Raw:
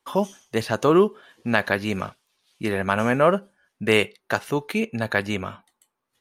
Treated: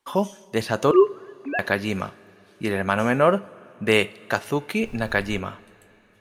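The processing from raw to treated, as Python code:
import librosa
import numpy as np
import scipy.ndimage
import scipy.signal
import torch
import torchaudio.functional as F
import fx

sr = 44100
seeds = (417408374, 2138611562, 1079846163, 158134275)

y = fx.sine_speech(x, sr, at=(0.91, 1.59))
y = fx.dmg_noise_colour(y, sr, seeds[0], colour='brown', level_db=-38.0, at=(4.83, 5.38), fade=0.02)
y = fx.rev_double_slope(y, sr, seeds[1], early_s=0.37, late_s=4.1, knee_db=-17, drr_db=15.5)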